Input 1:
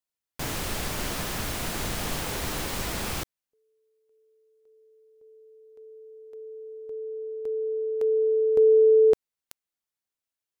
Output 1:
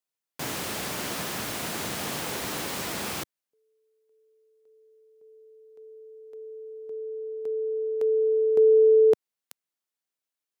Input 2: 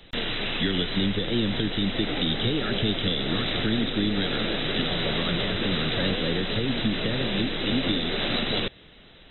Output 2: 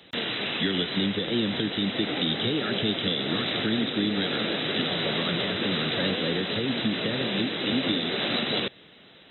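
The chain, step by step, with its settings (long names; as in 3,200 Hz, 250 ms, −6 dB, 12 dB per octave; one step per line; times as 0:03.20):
high-pass filter 150 Hz 12 dB per octave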